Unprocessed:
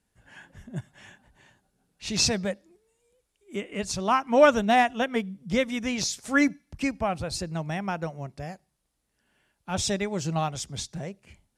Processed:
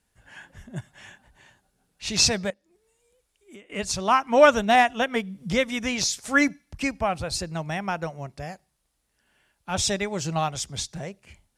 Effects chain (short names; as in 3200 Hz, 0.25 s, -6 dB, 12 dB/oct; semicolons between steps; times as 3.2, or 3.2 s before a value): 4.75–5.98 upward compressor, threshold -24 dBFS; bell 220 Hz -5 dB 2.5 oct; 2.5–3.7 compressor 5:1, threshold -50 dBFS, peak gain reduction 17.5 dB; gain +4 dB